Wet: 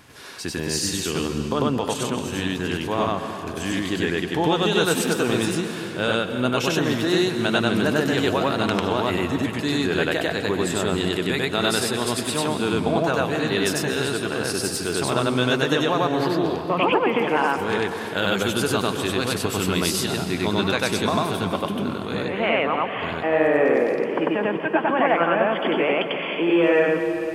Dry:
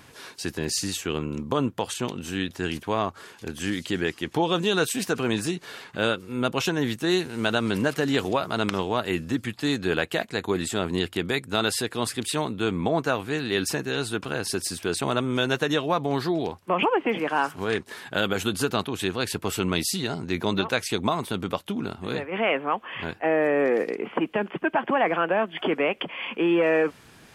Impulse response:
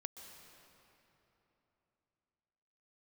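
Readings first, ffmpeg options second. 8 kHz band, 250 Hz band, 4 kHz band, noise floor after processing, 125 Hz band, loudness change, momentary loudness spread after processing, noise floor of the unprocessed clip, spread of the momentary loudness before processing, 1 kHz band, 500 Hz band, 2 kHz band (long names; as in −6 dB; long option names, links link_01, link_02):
+3.5 dB, +4.0 dB, +3.5 dB, −30 dBFS, +4.0 dB, +4.0 dB, 6 LU, −51 dBFS, 7 LU, +4.0 dB, +4.0 dB, +3.5 dB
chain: -filter_complex "[0:a]asplit=2[link_01][link_02];[1:a]atrim=start_sample=2205,adelay=96[link_03];[link_02][link_03]afir=irnorm=-1:irlink=0,volume=5dB[link_04];[link_01][link_04]amix=inputs=2:normalize=0"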